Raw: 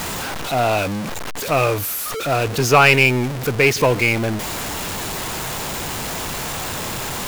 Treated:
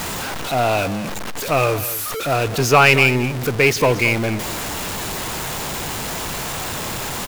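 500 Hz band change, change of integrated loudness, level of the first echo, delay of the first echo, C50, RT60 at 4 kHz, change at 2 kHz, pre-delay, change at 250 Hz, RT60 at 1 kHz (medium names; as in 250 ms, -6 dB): 0.0 dB, 0.0 dB, -15.0 dB, 222 ms, no reverb, no reverb, 0.0 dB, no reverb, 0.0 dB, no reverb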